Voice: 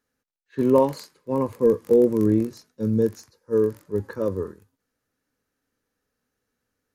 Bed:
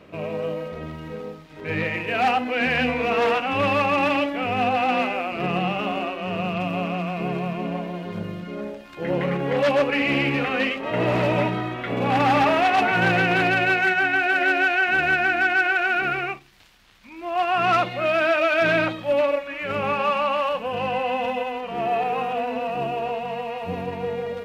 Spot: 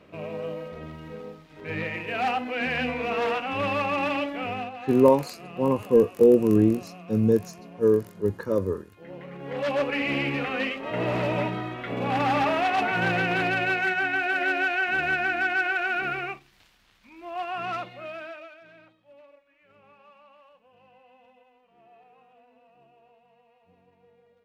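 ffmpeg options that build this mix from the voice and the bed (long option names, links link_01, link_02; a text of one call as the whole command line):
ffmpeg -i stem1.wav -i stem2.wav -filter_complex "[0:a]adelay=4300,volume=0.5dB[link_01];[1:a]volume=7dB,afade=type=out:start_time=4.48:duration=0.23:silence=0.251189,afade=type=in:start_time=9.32:duration=0.51:silence=0.237137,afade=type=out:start_time=16.54:duration=2.06:silence=0.0421697[link_02];[link_01][link_02]amix=inputs=2:normalize=0" out.wav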